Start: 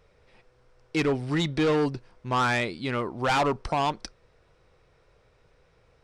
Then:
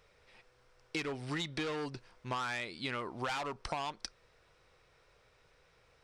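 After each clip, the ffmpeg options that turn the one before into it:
-af "tiltshelf=f=800:g=-5,acompressor=threshold=0.0316:ratio=12,volume=0.668"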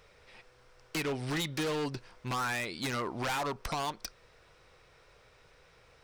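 -af "aeval=exprs='0.0211*(abs(mod(val(0)/0.0211+3,4)-2)-1)':c=same,volume=2"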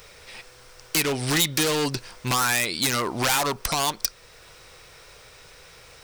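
-filter_complex "[0:a]crystalizer=i=3:c=0,asplit=2[s0][s1];[s1]alimiter=limit=0.0794:level=0:latency=1:release=442,volume=1[s2];[s0][s2]amix=inputs=2:normalize=0,volume=1.5"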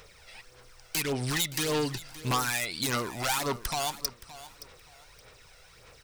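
-af "aphaser=in_gain=1:out_gain=1:delay=1.5:decay=0.51:speed=1.7:type=sinusoidal,aecho=1:1:571|1142:0.158|0.0365,volume=0.376"

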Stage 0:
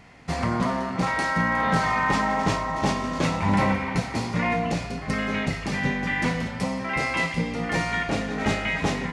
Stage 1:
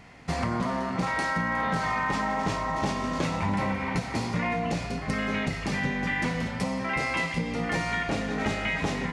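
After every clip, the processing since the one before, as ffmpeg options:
-af "acompressor=threshold=0.0631:ratio=6"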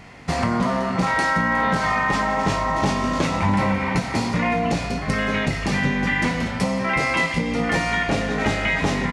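-filter_complex "[0:a]asplit=2[s0][s1];[s1]adelay=21,volume=0.299[s2];[s0][s2]amix=inputs=2:normalize=0,volume=2.11"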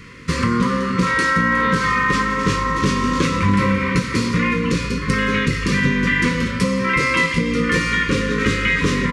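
-af "asuperstop=centerf=740:order=20:qfactor=1.7,volume=1.58"

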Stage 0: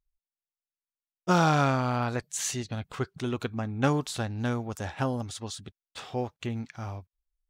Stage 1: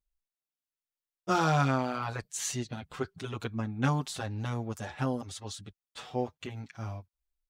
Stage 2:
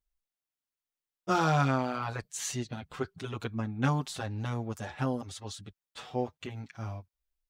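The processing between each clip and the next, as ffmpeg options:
-filter_complex "[0:a]asplit=2[s0][s1];[s1]adelay=6.8,afreqshift=0.88[s2];[s0][s2]amix=inputs=2:normalize=1"
-af "equalizer=f=9000:w=0.53:g=-2"

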